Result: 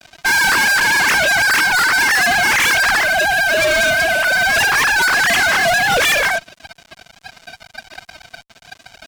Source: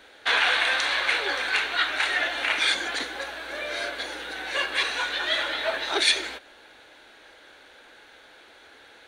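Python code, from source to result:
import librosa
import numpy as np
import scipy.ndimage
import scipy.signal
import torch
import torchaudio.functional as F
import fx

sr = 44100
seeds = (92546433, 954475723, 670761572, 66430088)

y = fx.sine_speech(x, sr)
y = fx.bandpass_edges(y, sr, low_hz=520.0, high_hz=2100.0)
y = fx.fuzz(y, sr, gain_db=43.0, gate_db=-50.0)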